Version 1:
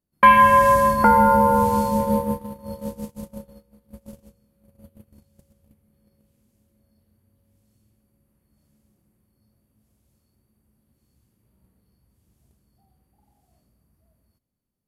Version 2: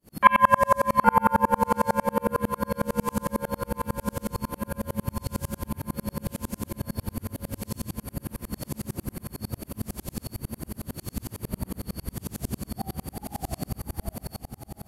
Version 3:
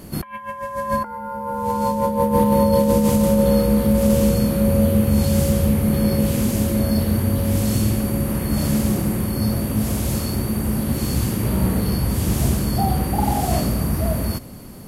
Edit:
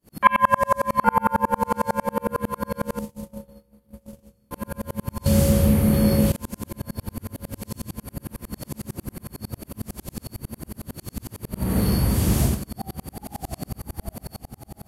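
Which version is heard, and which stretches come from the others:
2
2.99–4.51 from 1
5.26–6.32 from 3
11.67–12.53 from 3, crossfade 0.24 s

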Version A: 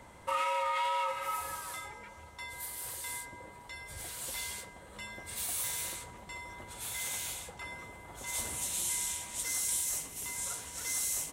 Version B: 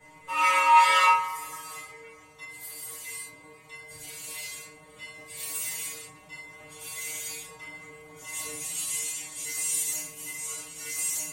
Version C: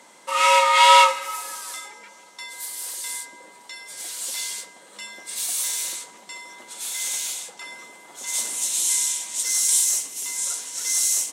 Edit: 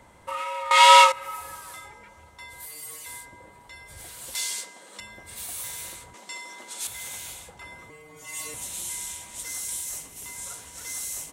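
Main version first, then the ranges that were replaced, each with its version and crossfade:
A
0.71–1.12 from C
2.66–3.06 from B
4.35–5 from C
6.14–6.87 from C
7.9–8.54 from B

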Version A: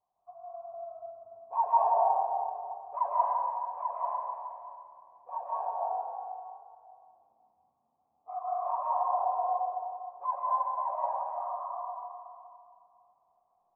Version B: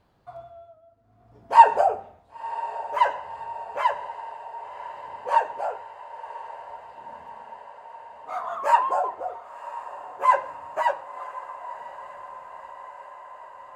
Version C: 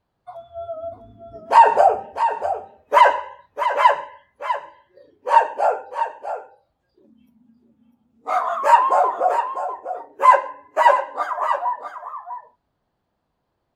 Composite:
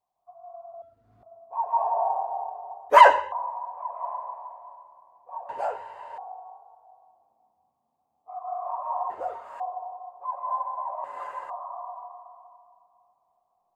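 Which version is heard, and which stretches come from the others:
A
0.82–1.23 from B
2.9–3.32 from C
5.49–6.18 from B
9.1–9.6 from B
11.04–11.5 from B

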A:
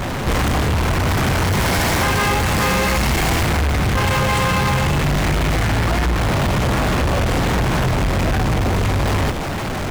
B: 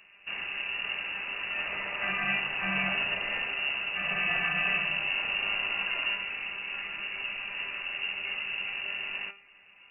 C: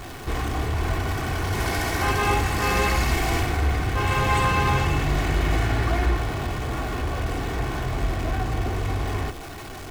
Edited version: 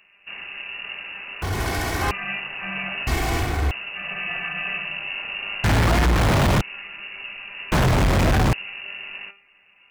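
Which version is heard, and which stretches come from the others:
B
1.42–2.11 from C
3.07–3.71 from C
5.64–6.61 from A
7.72–8.53 from A

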